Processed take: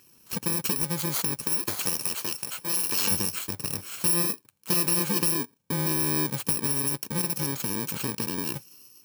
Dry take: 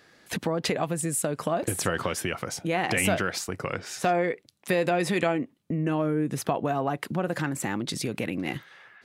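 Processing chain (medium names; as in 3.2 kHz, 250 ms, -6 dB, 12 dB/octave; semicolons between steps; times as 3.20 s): bit-reversed sample order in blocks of 64 samples; 1.43–3.10 s: high-pass 270 Hz -> 610 Hz 6 dB/octave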